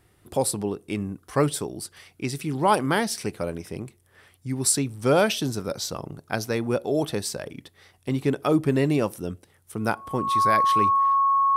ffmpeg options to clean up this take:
-af "bandreject=f=1.1k:w=30"

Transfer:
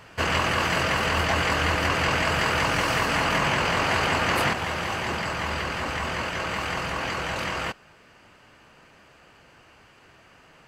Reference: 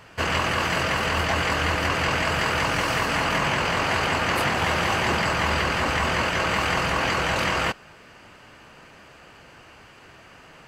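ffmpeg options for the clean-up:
-af "asetnsamples=n=441:p=0,asendcmd='4.53 volume volume 5.5dB',volume=0dB"

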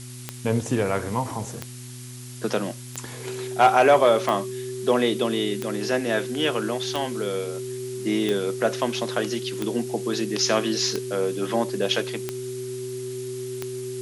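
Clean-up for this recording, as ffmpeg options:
-af "adeclick=t=4,bandreject=f=123.8:t=h:w=4,bandreject=f=247.6:t=h:w=4,bandreject=f=371.4:t=h:w=4,bandreject=f=380:w=30,afftdn=nr=30:nf=-38"

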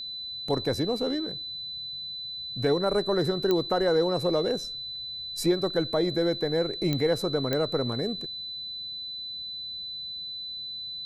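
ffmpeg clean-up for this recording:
-af "adeclick=t=4,bandreject=f=4k:w=30"

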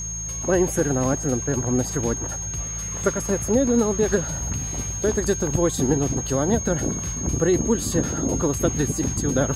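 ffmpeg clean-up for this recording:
-af "bandreject=f=54.6:t=h:w=4,bandreject=f=109.2:t=h:w=4,bandreject=f=163.8:t=h:w=4,bandreject=f=6.5k:w=30"

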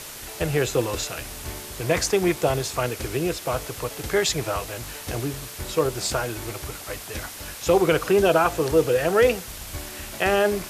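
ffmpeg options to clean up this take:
-af "afwtdn=0.014"

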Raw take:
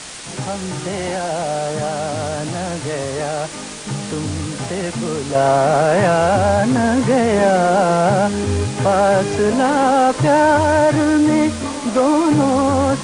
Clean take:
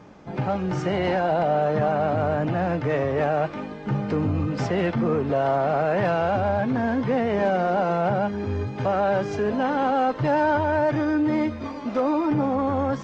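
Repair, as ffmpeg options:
-af "adeclick=t=4,afwtdn=0.032,asetnsamples=n=441:p=0,asendcmd='5.35 volume volume -8dB',volume=0dB"

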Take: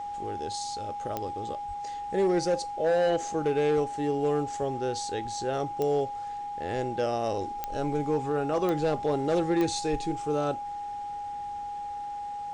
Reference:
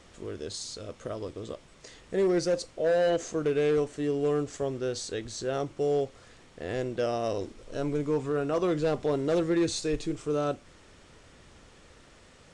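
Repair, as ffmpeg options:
-filter_complex "[0:a]adeclick=t=4,bandreject=f=820:w=30,asplit=3[a][b][c];[a]afade=t=out:st=1.67:d=0.02[d];[b]highpass=f=140:w=0.5412,highpass=f=140:w=1.3066,afade=t=in:st=1.67:d=0.02,afade=t=out:st=1.79:d=0.02[e];[c]afade=t=in:st=1.79:d=0.02[f];[d][e][f]amix=inputs=3:normalize=0,asplit=3[g][h][i];[g]afade=t=out:st=7.7:d=0.02[j];[h]highpass=f=140:w=0.5412,highpass=f=140:w=1.3066,afade=t=in:st=7.7:d=0.02,afade=t=out:st=7.82:d=0.02[k];[i]afade=t=in:st=7.82:d=0.02[l];[j][k][l]amix=inputs=3:normalize=0"

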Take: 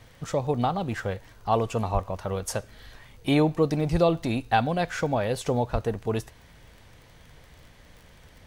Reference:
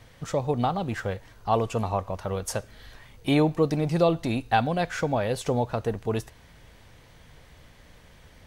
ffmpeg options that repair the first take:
-filter_complex "[0:a]adeclick=t=4,asplit=3[a][b][c];[a]afade=t=out:st=1.93:d=0.02[d];[b]highpass=f=140:w=0.5412,highpass=f=140:w=1.3066,afade=t=in:st=1.93:d=0.02,afade=t=out:st=2.05:d=0.02[e];[c]afade=t=in:st=2.05:d=0.02[f];[d][e][f]amix=inputs=3:normalize=0,asplit=3[g][h][i];[g]afade=t=out:st=3.91:d=0.02[j];[h]highpass=f=140:w=0.5412,highpass=f=140:w=1.3066,afade=t=in:st=3.91:d=0.02,afade=t=out:st=4.03:d=0.02[k];[i]afade=t=in:st=4.03:d=0.02[l];[j][k][l]amix=inputs=3:normalize=0,asplit=3[m][n][o];[m]afade=t=out:st=5.72:d=0.02[p];[n]highpass=f=140:w=0.5412,highpass=f=140:w=1.3066,afade=t=in:st=5.72:d=0.02,afade=t=out:st=5.84:d=0.02[q];[o]afade=t=in:st=5.84:d=0.02[r];[p][q][r]amix=inputs=3:normalize=0"

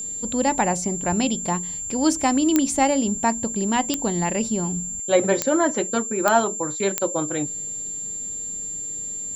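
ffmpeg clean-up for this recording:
-af "adeclick=t=4,bandreject=f=7.3k:w=30"

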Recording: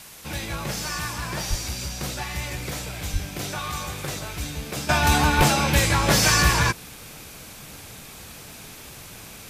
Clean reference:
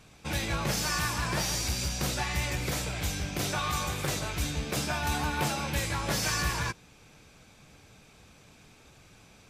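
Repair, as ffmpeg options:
-filter_complex "[0:a]asplit=3[a][b][c];[a]afade=t=out:st=1.49:d=0.02[d];[b]highpass=f=140:w=0.5412,highpass=f=140:w=1.3066,afade=t=in:st=1.49:d=0.02,afade=t=out:st=1.61:d=0.02[e];[c]afade=t=in:st=1.61:d=0.02[f];[d][e][f]amix=inputs=3:normalize=0,asplit=3[g][h][i];[g]afade=t=out:st=3.12:d=0.02[j];[h]highpass=f=140:w=0.5412,highpass=f=140:w=1.3066,afade=t=in:st=3.12:d=0.02,afade=t=out:st=3.24:d=0.02[k];[i]afade=t=in:st=3.24:d=0.02[l];[j][k][l]amix=inputs=3:normalize=0,asplit=3[m][n][o];[m]afade=t=out:st=5.37:d=0.02[p];[n]highpass=f=140:w=0.5412,highpass=f=140:w=1.3066,afade=t=in:st=5.37:d=0.02,afade=t=out:st=5.49:d=0.02[q];[o]afade=t=in:st=5.49:d=0.02[r];[p][q][r]amix=inputs=3:normalize=0,afwtdn=0.0071,asetnsamples=n=441:p=0,asendcmd='4.89 volume volume -11dB',volume=0dB"

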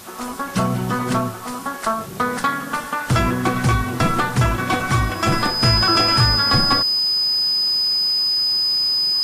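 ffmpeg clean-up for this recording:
-af "bandreject=f=5k:w=30,afwtdn=0.01"

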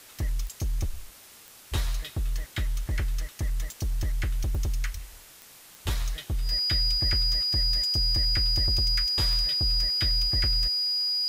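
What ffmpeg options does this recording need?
-af "adeclick=t=4,bandreject=f=4.9k:w=30,afwtdn=0.0035"

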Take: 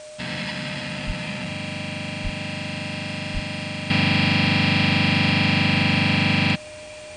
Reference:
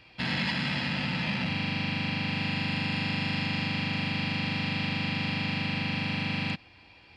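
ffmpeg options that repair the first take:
-filter_complex "[0:a]bandreject=f=610:w=30,asplit=3[a][b][c];[a]afade=t=out:st=1.06:d=0.02[d];[b]highpass=f=140:w=0.5412,highpass=f=140:w=1.3066,afade=t=in:st=1.06:d=0.02,afade=t=out:st=1.18:d=0.02[e];[c]afade=t=in:st=1.18:d=0.02[f];[d][e][f]amix=inputs=3:normalize=0,asplit=3[g][h][i];[g]afade=t=out:st=2.23:d=0.02[j];[h]highpass=f=140:w=0.5412,highpass=f=140:w=1.3066,afade=t=in:st=2.23:d=0.02,afade=t=out:st=2.35:d=0.02[k];[i]afade=t=in:st=2.35:d=0.02[l];[j][k][l]amix=inputs=3:normalize=0,asplit=3[m][n][o];[m]afade=t=out:st=3.33:d=0.02[p];[n]highpass=f=140:w=0.5412,highpass=f=140:w=1.3066,afade=t=in:st=3.33:d=0.02,afade=t=out:st=3.45:d=0.02[q];[o]afade=t=in:st=3.45:d=0.02[r];[p][q][r]amix=inputs=3:normalize=0,afwtdn=0.0063,asetnsamples=n=441:p=0,asendcmd='3.9 volume volume -11dB',volume=0dB"

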